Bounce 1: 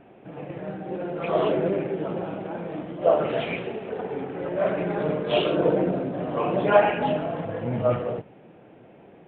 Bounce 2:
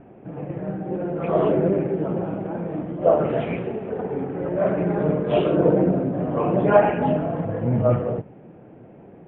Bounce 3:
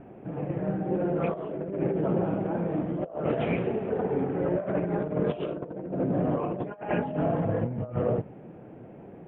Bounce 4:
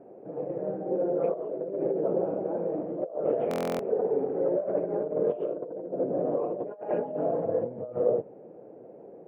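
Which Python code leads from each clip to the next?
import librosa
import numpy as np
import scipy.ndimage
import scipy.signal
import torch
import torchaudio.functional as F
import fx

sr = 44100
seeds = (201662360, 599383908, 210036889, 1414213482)

y1 = scipy.signal.sosfilt(scipy.signal.butter(2, 2000.0, 'lowpass', fs=sr, output='sos'), x)
y1 = fx.low_shelf(y1, sr, hz=340.0, db=9.0)
y2 = fx.over_compress(y1, sr, threshold_db=-24.0, ratio=-0.5)
y2 = y2 * librosa.db_to_amplitude(-3.5)
y3 = fx.bandpass_q(y2, sr, hz=500.0, q=2.5)
y3 = fx.buffer_glitch(y3, sr, at_s=(3.49,), block=1024, repeats=12)
y3 = y3 * librosa.db_to_amplitude(4.5)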